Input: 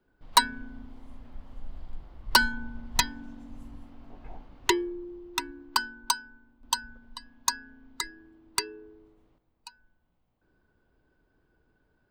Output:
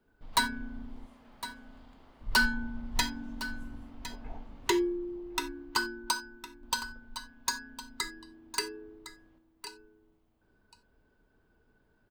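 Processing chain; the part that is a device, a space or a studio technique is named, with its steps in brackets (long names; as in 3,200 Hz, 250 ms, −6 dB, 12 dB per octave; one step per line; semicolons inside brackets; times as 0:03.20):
saturation between pre-emphasis and de-emphasis (high-shelf EQ 5,100 Hz +7 dB; soft clipping −17.5 dBFS, distortion −8 dB; high-shelf EQ 5,100 Hz −7 dB)
0:01.05–0:02.21: high-pass filter 440 Hz 6 dB per octave
single-tap delay 1,059 ms −13.5 dB
reverb whose tail is shaped and stops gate 110 ms falling, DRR 7.5 dB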